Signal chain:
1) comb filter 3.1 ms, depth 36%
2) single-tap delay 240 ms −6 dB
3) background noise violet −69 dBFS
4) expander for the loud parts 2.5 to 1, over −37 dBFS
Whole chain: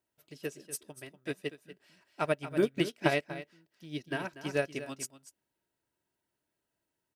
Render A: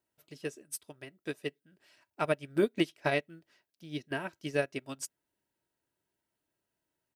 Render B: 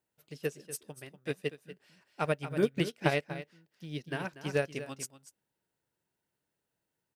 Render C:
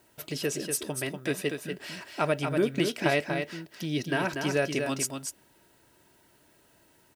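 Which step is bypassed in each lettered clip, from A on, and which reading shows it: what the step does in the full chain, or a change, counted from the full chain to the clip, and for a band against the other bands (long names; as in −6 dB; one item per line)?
2, change in crest factor −2.0 dB
1, 125 Hz band +4.5 dB
4, 8 kHz band +5.0 dB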